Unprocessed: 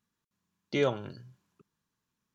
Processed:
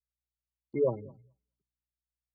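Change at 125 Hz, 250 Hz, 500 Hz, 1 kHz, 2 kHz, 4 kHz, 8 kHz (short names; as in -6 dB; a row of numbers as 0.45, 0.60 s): -2.5 dB, -3.5 dB, +0.5 dB, -6.5 dB, -16.5 dB, under -40 dB, n/a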